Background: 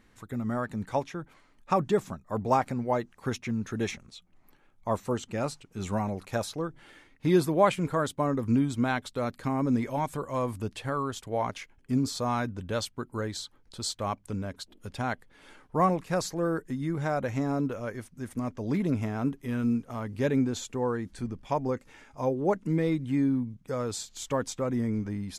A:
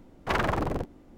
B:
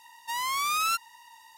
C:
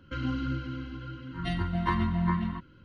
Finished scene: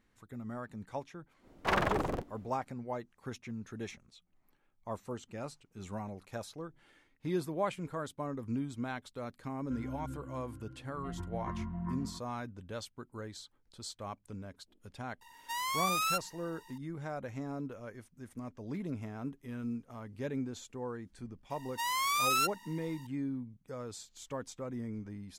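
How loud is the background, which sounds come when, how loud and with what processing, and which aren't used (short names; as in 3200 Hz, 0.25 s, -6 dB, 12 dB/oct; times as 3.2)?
background -11 dB
1.38 add A -2.5 dB, fades 0.10 s + low shelf 290 Hz -5.5 dB
9.59 add C -11 dB + LPF 1100 Hz
15.21 add B -5 dB
21.5 add B -2.5 dB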